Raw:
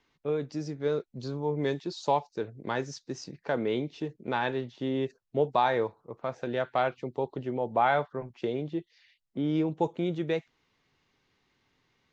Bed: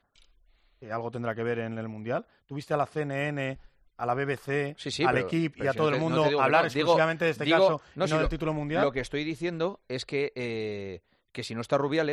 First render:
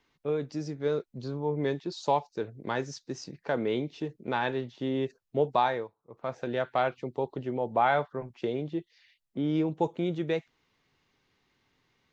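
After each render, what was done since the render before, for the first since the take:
0:01.18–0:01.92: high-shelf EQ 5,700 Hz −10.5 dB
0:05.62–0:06.30: duck −16 dB, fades 0.28 s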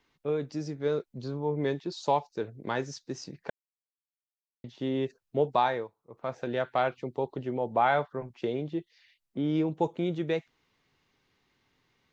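0:03.50–0:04.64: silence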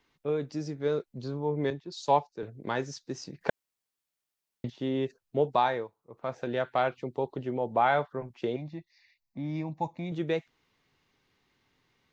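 0:01.70–0:02.43: multiband upward and downward expander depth 100%
0:03.41–0:04.70: clip gain +8.5 dB
0:08.56–0:10.12: phaser with its sweep stopped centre 2,100 Hz, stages 8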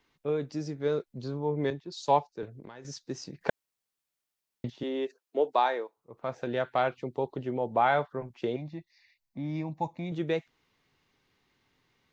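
0:02.45–0:02.85: downward compressor 16 to 1, threshold −41 dBFS
0:04.83–0:05.97: high-pass filter 290 Hz 24 dB per octave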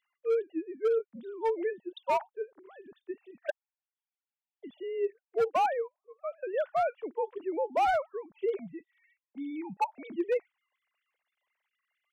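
three sine waves on the formant tracks
gain into a clipping stage and back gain 22 dB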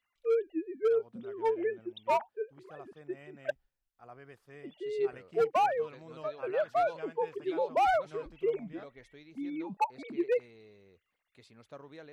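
mix in bed −23 dB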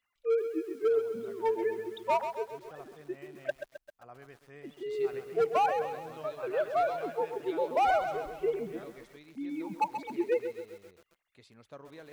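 feedback echo at a low word length 132 ms, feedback 55%, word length 9 bits, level −8.5 dB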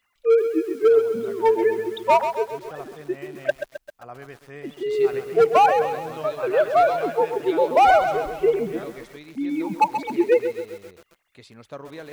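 level +11 dB

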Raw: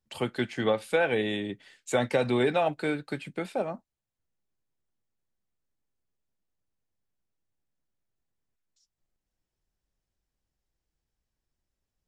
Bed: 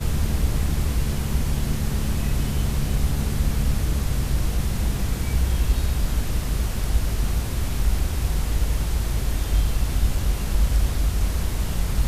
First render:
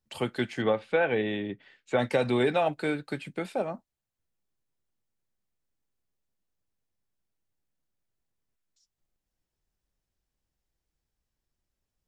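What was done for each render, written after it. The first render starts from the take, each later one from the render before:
0:00.62–0:01.99: low-pass filter 2,900 Hz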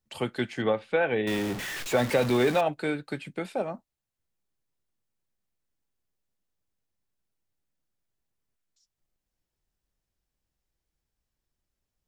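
0:01.27–0:02.61: converter with a step at zero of −29.5 dBFS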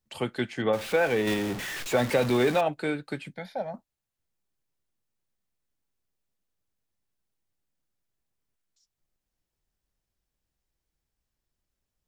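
0:00.73–0:01.34: converter with a step at zero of −33 dBFS
0:03.34–0:03.74: phaser with its sweep stopped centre 1,800 Hz, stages 8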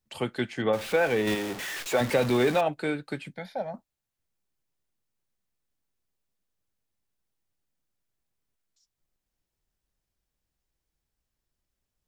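0:01.35–0:02.01: bass and treble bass −9 dB, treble +1 dB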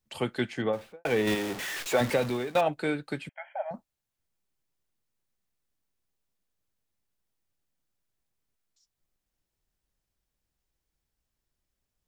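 0:00.50–0:01.05: fade out and dull
0:02.04–0:02.55: fade out, to −20 dB
0:03.29–0:03.71: linear-phase brick-wall band-pass 560–3,300 Hz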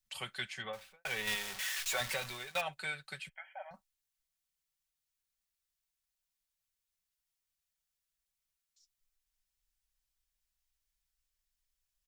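guitar amp tone stack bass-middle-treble 10-0-10
comb filter 5.3 ms, depth 46%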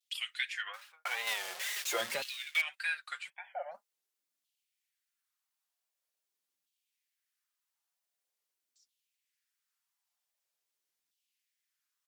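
tape wow and flutter 140 cents
auto-filter high-pass saw down 0.45 Hz 240–3,300 Hz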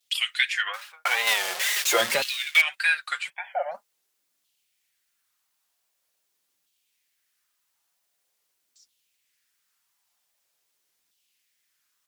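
level +12 dB

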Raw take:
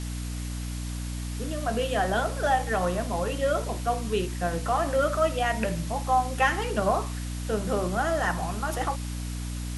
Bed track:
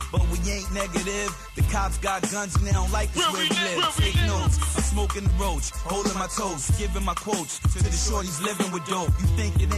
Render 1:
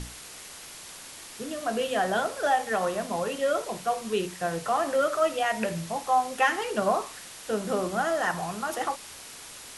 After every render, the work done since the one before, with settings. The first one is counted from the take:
mains-hum notches 60/120/180/240/300 Hz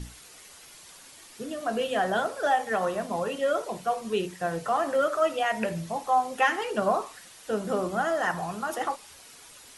broadband denoise 8 dB, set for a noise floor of −44 dBFS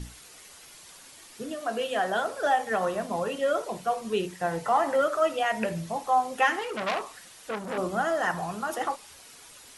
0:01.55–0:02.28: low-shelf EQ 210 Hz −10.5 dB
0:04.39–0:05.01: hollow resonant body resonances 890/2,000 Hz, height 9 dB → 13 dB, ringing for 30 ms
0:06.59–0:07.78: saturating transformer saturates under 3,000 Hz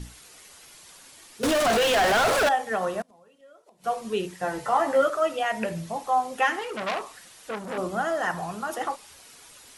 0:01.43–0:02.49: mid-hump overdrive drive 39 dB, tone 4,500 Hz, clips at −15 dBFS
0:03.01–0:03.84: gate with flip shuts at −26 dBFS, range −27 dB
0:04.41–0:05.10: double-tracking delay 15 ms −4 dB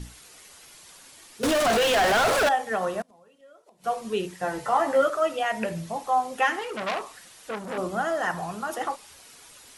no processing that can be heard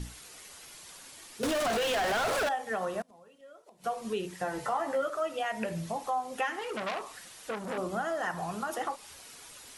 downward compressor 2.5 to 1, threshold −32 dBFS, peak gain reduction 10.5 dB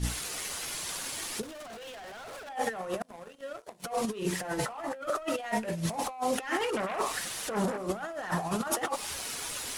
leveller curve on the samples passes 2
compressor whose output falls as the input rises −32 dBFS, ratio −0.5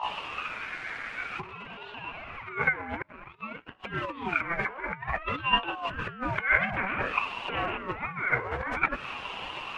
low-pass with resonance 1,900 Hz, resonance Q 8.2
ring modulator whose carrier an LFO sweeps 600 Hz, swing 55%, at 0.53 Hz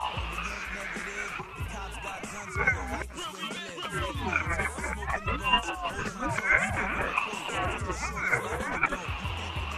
mix in bed track −14.5 dB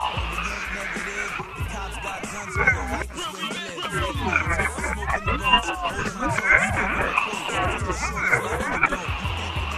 level +6.5 dB

